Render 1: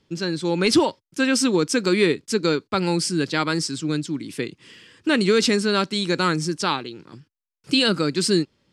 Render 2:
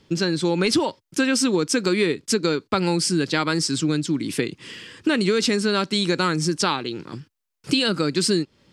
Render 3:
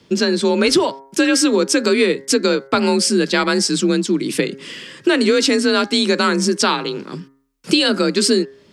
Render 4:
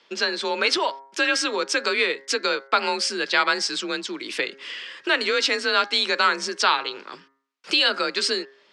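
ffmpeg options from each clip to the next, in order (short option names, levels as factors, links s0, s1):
-af "acompressor=threshold=0.0447:ratio=4,volume=2.51"
-af "afreqshift=36,bandreject=f=135.8:t=h:w=4,bandreject=f=271.6:t=h:w=4,bandreject=f=407.4:t=h:w=4,bandreject=f=543.2:t=h:w=4,bandreject=f=679:t=h:w=4,bandreject=f=814.8:t=h:w=4,bandreject=f=950.6:t=h:w=4,bandreject=f=1086.4:t=h:w=4,bandreject=f=1222.2:t=h:w=4,bandreject=f=1358:t=h:w=4,bandreject=f=1493.8:t=h:w=4,bandreject=f=1629.6:t=h:w=4,bandreject=f=1765.4:t=h:w=4,bandreject=f=1901.2:t=h:w=4,bandreject=f=2037:t=h:w=4,bandreject=f=2172.8:t=h:w=4,volume=1.88"
-af "highpass=780,lowpass=4300"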